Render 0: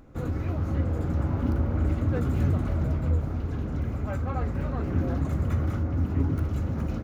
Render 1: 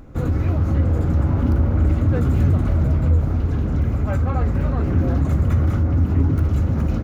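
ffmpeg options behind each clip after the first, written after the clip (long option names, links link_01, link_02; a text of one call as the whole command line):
ffmpeg -i in.wav -filter_complex "[0:a]lowshelf=frequency=150:gain=5,asplit=2[link_01][link_02];[link_02]alimiter=limit=-19.5dB:level=0:latency=1,volume=1.5dB[link_03];[link_01][link_03]amix=inputs=2:normalize=0" out.wav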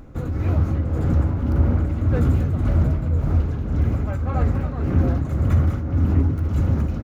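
ffmpeg -i in.wav -filter_complex "[0:a]asplit=2[link_01][link_02];[link_02]adelay=268.2,volume=-9dB,highshelf=frequency=4000:gain=-6.04[link_03];[link_01][link_03]amix=inputs=2:normalize=0,tremolo=f=1.8:d=0.5" out.wav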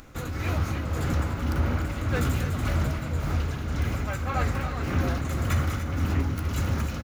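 ffmpeg -i in.wav -filter_complex "[0:a]tiltshelf=frequency=1100:gain=-10,asplit=2[link_01][link_02];[link_02]aecho=0:1:296:0.299[link_03];[link_01][link_03]amix=inputs=2:normalize=0,volume=2dB" out.wav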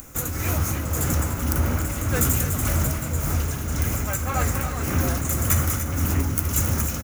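ffmpeg -i in.wav -af "aexciter=amount=7.8:drive=3.2:freq=6000,volume=2.5dB" out.wav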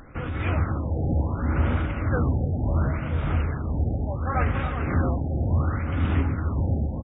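ffmpeg -i in.wav -af "afftfilt=real='re*lt(b*sr/1024,830*pow(3800/830,0.5+0.5*sin(2*PI*0.7*pts/sr)))':imag='im*lt(b*sr/1024,830*pow(3800/830,0.5+0.5*sin(2*PI*0.7*pts/sr)))':win_size=1024:overlap=0.75" out.wav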